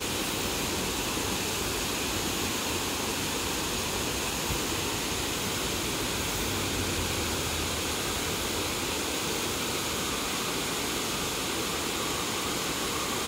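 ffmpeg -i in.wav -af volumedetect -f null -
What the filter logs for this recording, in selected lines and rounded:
mean_volume: -30.4 dB
max_volume: -16.9 dB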